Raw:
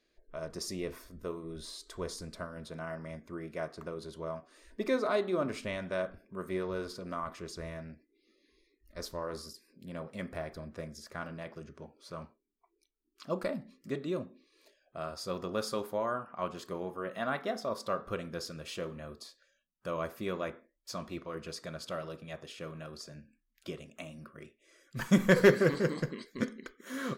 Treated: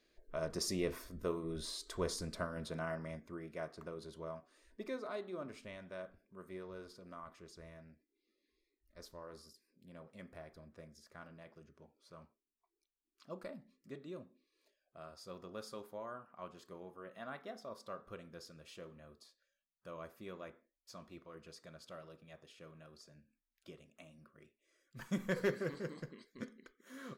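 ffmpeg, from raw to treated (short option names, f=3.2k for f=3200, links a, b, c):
-af "volume=1dB,afade=t=out:st=2.7:d=0.71:silence=0.446684,afade=t=out:st=4.17:d=0.81:silence=0.446684"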